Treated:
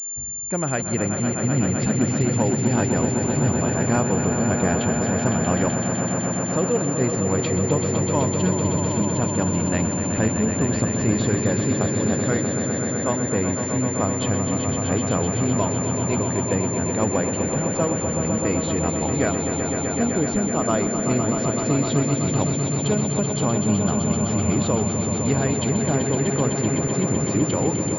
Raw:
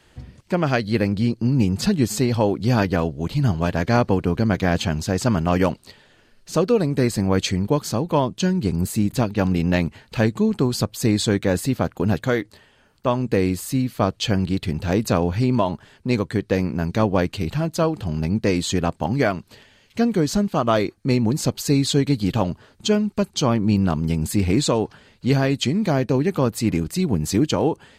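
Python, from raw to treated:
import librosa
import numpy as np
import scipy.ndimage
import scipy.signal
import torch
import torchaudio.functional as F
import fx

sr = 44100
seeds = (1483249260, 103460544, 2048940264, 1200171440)

y = fx.echo_swell(x, sr, ms=127, loudest=5, wet_db=-8.0)
y = fx.pwm(y, sr, carrier_hz=7200.0)
y = F.gain(torch.from_numpy(y), -4.5).numpy()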